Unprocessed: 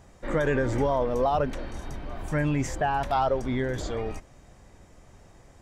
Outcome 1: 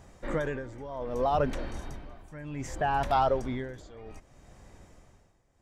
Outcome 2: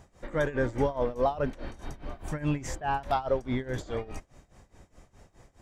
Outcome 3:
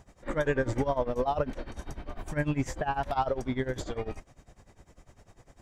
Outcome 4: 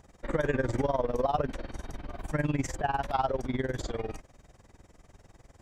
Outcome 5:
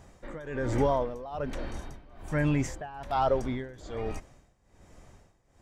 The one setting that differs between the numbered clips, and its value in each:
tremolo, rate: 0.64 Hz, 4.8 Hz, 10 Hz, 20 Hz, 1.2 Hz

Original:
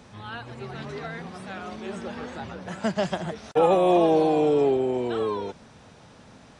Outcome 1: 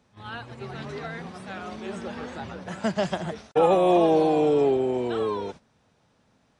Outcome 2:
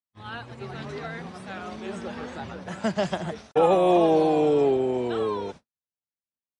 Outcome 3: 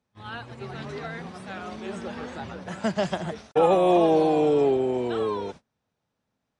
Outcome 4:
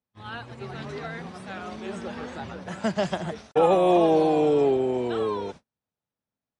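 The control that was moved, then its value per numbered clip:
gate, range: -15 dB, -59 dB, -30 dB, -42 dB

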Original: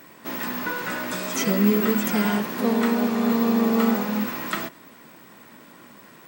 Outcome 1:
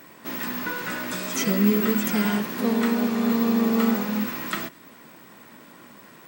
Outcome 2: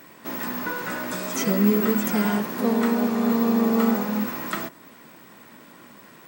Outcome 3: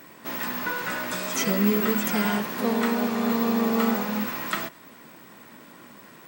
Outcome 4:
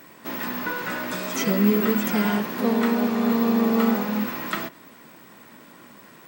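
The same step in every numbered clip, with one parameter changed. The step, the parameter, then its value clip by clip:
dynamic bell, frequency: 730 Hz, 3 kHz, 280 Hz, 8.7 kHz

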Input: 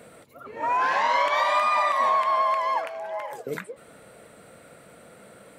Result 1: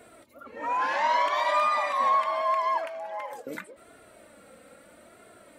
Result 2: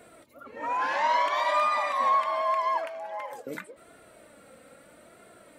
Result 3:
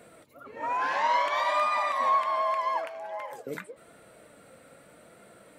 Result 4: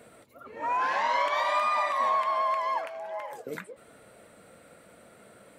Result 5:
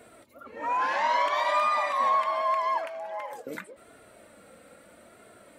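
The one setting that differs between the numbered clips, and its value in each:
flange, regen: +2%, +23%, +70%, -74%, -20%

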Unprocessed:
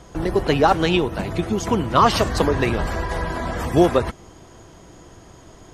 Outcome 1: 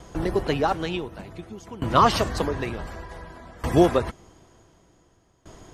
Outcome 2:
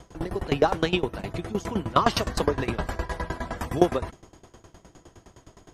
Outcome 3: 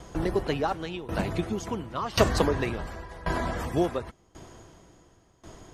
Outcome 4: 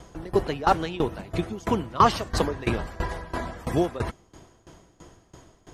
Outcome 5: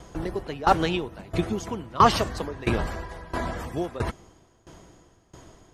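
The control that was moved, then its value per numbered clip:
sawtooth tremolo in dB, rate: 0.55 Hz, 9.7 Hz, 0.92 Hz, 3 Hz, 1.5 Hz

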